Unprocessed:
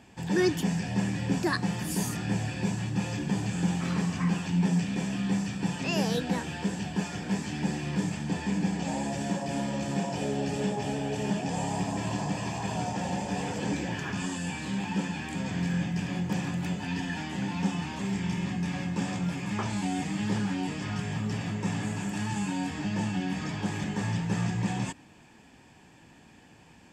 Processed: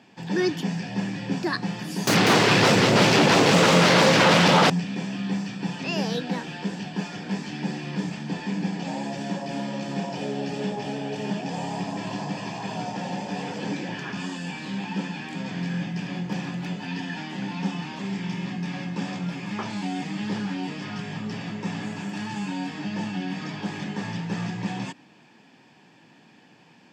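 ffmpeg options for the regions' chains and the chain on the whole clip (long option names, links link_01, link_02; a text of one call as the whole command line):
ffmpeg -i in.wav -filter_complex "[0:a]asettb=1/sr,asplit=3[link_01][link_02][link_03];[link_01]atrim=end=2.074[link_04];[link_02]atrim=start=2.07:end=4.7,asetpts=PTS-STARTPTS,afade=type=in:duration=0.004:curve=qsin,afade=type=out:start_time=2.626:duration=0.004:curve=qsin,aeval=exprs='0.168*sin(PI/2*7.08*val(0)/0.168)':channel_layout=same,aecho=1:1:194:0.531,atrim=end_sample=115983[link_05];[link_03]atrim=start=4.696[link_06];[link_04][link_05]acrossfade=duration=0.004:curve1=hsin:curve2=qsin[link_07];[link_07][link_06]acrossfade=duration=0.004:curve1=qsin:curve2=hsin,highpass=frequency=140:width=0.5412,highpass=frequency=140:width=1.3066,highshelf=frequency=6400:width_type=q:width=1.5:gain=-8,volume=1dB" out.wav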